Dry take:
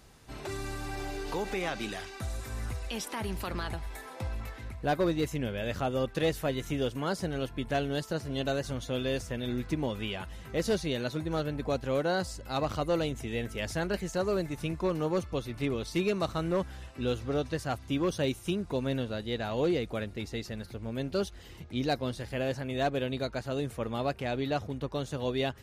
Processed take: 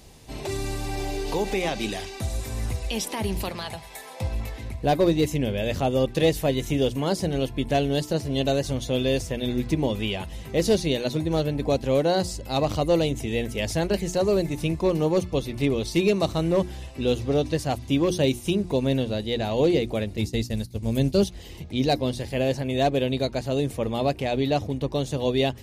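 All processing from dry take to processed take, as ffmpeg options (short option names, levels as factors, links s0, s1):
-filter_complex "[0:a]asettb=1/sr,asplit=3[s0][s1][s2];[s0]atrim=end=3.494[s3];[s1]atrim=start=3.49:end=4.21,asetpts=PTS-STARTPTS,afade=t=in:d=0.004:c=qsin,afade=t=out:st=0.716:d=0.004:c=qsin,highpass=160,equalizer=f=310:t=o:w=0.9:g=-12.5[s4];[s2]atrim=start=4.206[s5];[s3][s4]acrossfade=d=0.004:c1=hsin:c2=qsin[s6];[s6][s5]acrossfade=d=0.004:c1=qsin:c2=hsin,asettb=1/sr,asplit=3[s7][s8][s9];[s7]atrim=end=20.174[s10];[s8]atrim=start=20.17:end=21.24,asetpts=PTS-STARTPTS,afade=t=in:d=0.004:c=qsin,afade=t=out:st=1.066:d=0.004:c=qsin,agate=range=0.0224:threshold=0.0158:ratio=3:release=100:detection=peak,acrossover=split=3100[s11][s12];[s12]acompressor=threshold=0.00251:ratio=4:attack=1:release=60[s13];[s11][s13]amix=inputs=2:normalize=0,bass=f=250:g=7,treble=f=4000:g=13[s14];[s9]atrim=start=21.236[s15];[s10][s14]acrossfade=d=0.004:c1=hsin:c2=qsin[s16];[s16][s15]acrossfade=d=0.004:c1=qsin:c2=hsin,equalizer=f=1400:w=2:g=-12,bandreject=f=60:t=h:w=6,bandreject=f=120:t=h:w=6,bandreject=f=180:t=h:w=6,bandreject=f=240:t=h:w=6,bandreject=f=300:t=h:w=6,bandreject=f=360:t=h:w=6,volume=2.66"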